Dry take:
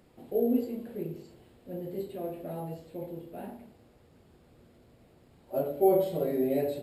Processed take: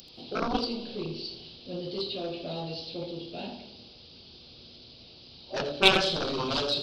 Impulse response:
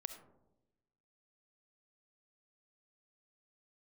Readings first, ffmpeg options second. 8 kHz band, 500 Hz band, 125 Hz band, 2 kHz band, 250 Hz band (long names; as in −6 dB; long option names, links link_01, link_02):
can't be measured, −3.0 dB, +2.0 dB, +22.5 dB, −2.5 dB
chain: -filter_complex "[0:a]aresample=11025,aresample=44100,aeval=exprs='0.266*(cos(1*acos(clip(val(0)/0.266,-1,1)))-cos(1*PI/2))+0.106*(cos(7*acos(clip(val(0)/0.266,-1,1)))-cos(7*PI/2))':channel_layout=same,aexciter=amount=10.6:drive=9.2:freq=3000,asplit=2[link_01][link_02];[1:a]atrim=start_sample=2205,asetrate=27783,aresample=44100,adelay=83[link_03];[link_02][link_03]afir=irnorm=-1:irlink=0,volume=-11.5dB[link_04];[link_01][link_04]amix=inputs=2:normalize=0,volume=-2.5dB"